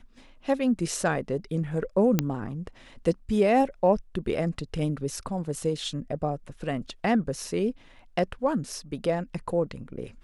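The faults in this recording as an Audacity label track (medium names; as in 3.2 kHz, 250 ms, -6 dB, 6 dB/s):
2.190000	2.190000	pop -8 dBFS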